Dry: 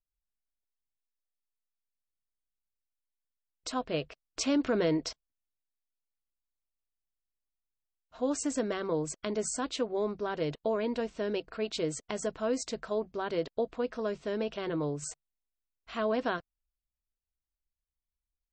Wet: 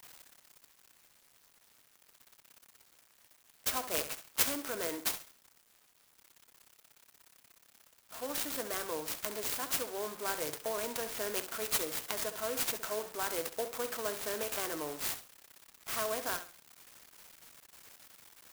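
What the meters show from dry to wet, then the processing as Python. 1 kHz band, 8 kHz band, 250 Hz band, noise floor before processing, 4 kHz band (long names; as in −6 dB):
−2.0 dB, +4.0 dB, −13.0 dB, below −85 dBFS, +2.0 dB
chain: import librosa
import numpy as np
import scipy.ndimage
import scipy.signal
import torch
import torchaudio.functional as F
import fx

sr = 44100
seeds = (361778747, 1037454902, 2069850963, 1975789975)

y = x + 0.5 * 10.0 ** (-40.0 / 20.0) * np.sign(x)
y = scipy.signal.sosfilt(scipy.signal.butter(2, 170.0, 'highpass', fs=sr, output='sos'), y)
y = fx.low_shelf(y, sr, hz=480.0, db=-10.0)
y = fx.rider(y, sr, range_db=10, speed_s=0.5)
y = fx.brickwall_lowpass(y, sr, high_hz=6800.0)
y = fx.tilt_eq(y, sr, slope=3.0)
y = fx.room_flutter(y, sr, wall_m=11.4, rt60_s=0.36)
y = fx.clock_jitter(y, sr, seeds[0], jitter_ms=0.094)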